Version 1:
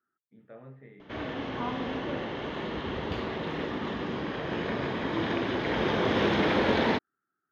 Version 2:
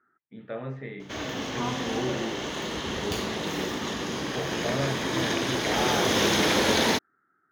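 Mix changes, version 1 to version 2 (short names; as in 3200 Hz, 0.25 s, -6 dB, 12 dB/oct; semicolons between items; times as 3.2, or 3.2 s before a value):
speech +12.0 dB; master: remove air absorption 370 m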